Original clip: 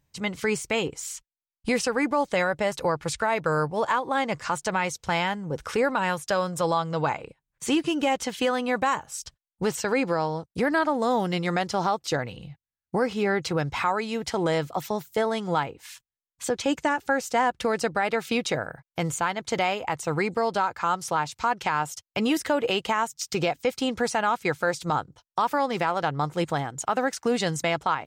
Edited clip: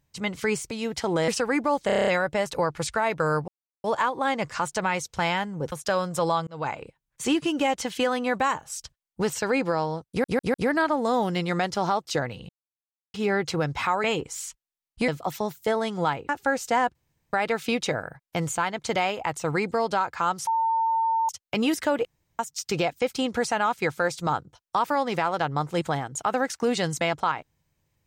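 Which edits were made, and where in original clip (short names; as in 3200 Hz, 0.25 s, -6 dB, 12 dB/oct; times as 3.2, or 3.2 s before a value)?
0.71–1.75 swap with 14.01–14.58
2.33 stutter 0.03 s, 8 plays
3.74 insert silence 0.36 s
5.62–6.14 cut
6.89–7.18 fade in
10.51 stutter 0.15 s, 4 plays
12.46–13.11 mute
15.79–16.92 cut
17.58–17.96 room tone
21.1–21.92 bleep 903 Hz -20.5 dBFS
22.68–23.02 room tone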